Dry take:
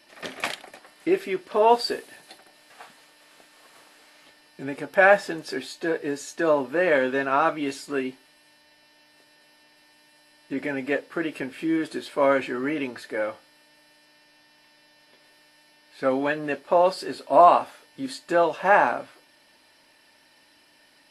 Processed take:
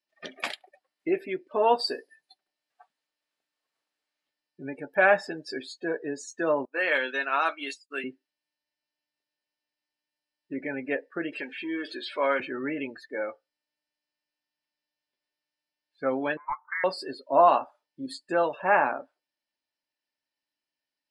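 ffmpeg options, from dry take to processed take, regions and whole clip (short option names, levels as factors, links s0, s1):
-filter_complex "[0:a]asettb=1/sr,asplit=3[s0][s1][s2];[s0]atrim=end=6.654[s3];[s1]atrim=start=6.65:end=8.04,asetpts=PTS-STARTPTS,afade=t=in:d=0.004:c=qsin,afade=t=out:st=1.386:d=0.004:c=qsin,highpass=220,agate=range=0.0224:threshold=0.0316:ratio=3:release=100:detection=peak,tiltshelf=f=1100:g=-8[s4];[s2]atrim=start=8.036[s5];[s3][s4]acrossfade=d=0.004:c1=hsin:c2=qsin[s6];[s6][s5]acrossfade=d=0.004:c1=qsin:c2=hsin,asettb=1/sr,asplit=3[s7][s8][s9];[s7]atrim=end=11.324[s10];[s8]atrim=start=11.32:end=12.4,asetpts=PTS-STARTPTS,afade=t=in:d=0.004:c=qsin,afade=t=out:st=1.076:d=0.004:c=qsin,aeval=exprs='val(0)+0.5*0.0178*sgn(val(0))':c=same,highpass=110,lowpass=3200,aemphasis=mode=production:type=riaa[s11];[s9]atrim=start=12.396[s12];[s10][s11]acrossfade=d=0.004:c1=hsin:c2=qsin[s13];[s13][s12]acrossfade=d=0.004:c1=qsin:c2=hsin,asettb=1/sr,asplit=3[s14][s15][s16];[s14]atrim=end=16.374[s17];[s15]atrim=start=16.37:end=16.84,asetpts=PTS-STARTPTS,afade=t=in:d=0.004:c=qsin,afade=t=out:st=0.466:d=0.004:c=qsin,highpass=f=1500:t=q:w=2.9,lowpass=f=2300:t=q:w=0.5098,lowpass=f=2300:t=q:w=0.6013,lowpass=f=2300:t=q:w=0.9,lowpass=f=2300:t=q:w=2.563,afreqshift=-2700[s18];[s16]atrim=start=16.836[s19];[s17][s18]acrossfade=d=0.004:c1=hsin:c2=qsin[s20];[s20][s19]acrossfade=d=0.004:c1=qsin:c2=hsin,aemphasis=mode=production:type=50fm,afftdn=nr=30:nf=-34,lowpass=5700,volume=0.631"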